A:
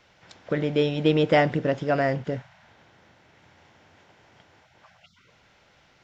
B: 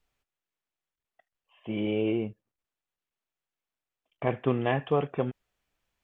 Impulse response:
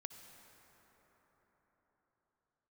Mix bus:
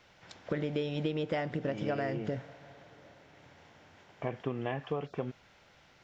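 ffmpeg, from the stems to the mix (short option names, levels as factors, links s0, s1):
-filter_complex "[0:a]volume=0.708,asplit=2[s0][s1];[s1]volume=0.2[s2];[1:a]volume=0.596[s3];[2:a]atrim=start_sample=2205[s4];[s2][s4]afir=irnorm=-1:irlink=0[s5];[s0][s3][s5]amix=inputs=3:normalize=0,acompressor=threshold=0.0355:ratio=12"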